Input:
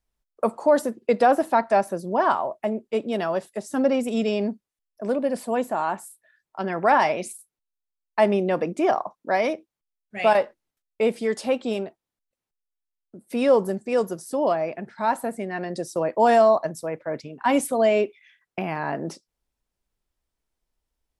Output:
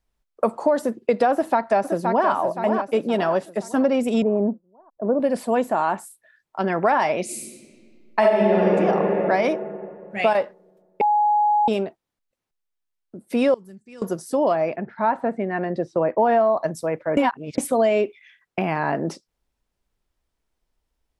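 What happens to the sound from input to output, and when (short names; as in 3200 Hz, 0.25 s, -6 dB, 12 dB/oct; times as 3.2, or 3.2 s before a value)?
1.32–2.29 echo throw 0.52 s, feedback 45%, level -8.5 dB
4.22–5.2 LPF 1100 Hz 24 dB/oct
7.24–8.65 reverb throw, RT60 2.4 s, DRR -9.5 dB
11.01–11.68 bleep 836 Hz -19 dBFS
13.54–14.02 passive tone stack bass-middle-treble 6-0-2
14.76–16.57 LPF 2200 Hz
17.17–17.58 reverse
whole clip: compressor 6:1, threshold -20 dBFS; high shelf 5700 Hz -6 dB; gain +5 dB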